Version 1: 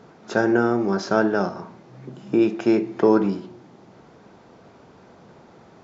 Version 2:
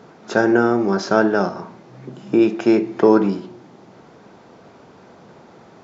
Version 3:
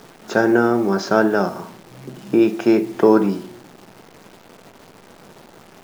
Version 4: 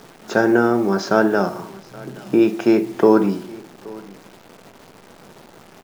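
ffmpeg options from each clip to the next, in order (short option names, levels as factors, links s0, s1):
-af "lowshelf=f=71:g=-9.5,volume=1.58"
-af "acrusher=bits=8:dc=4:mix=0:aa=0.000001"
-af "aecho=1:1:824:0.0794"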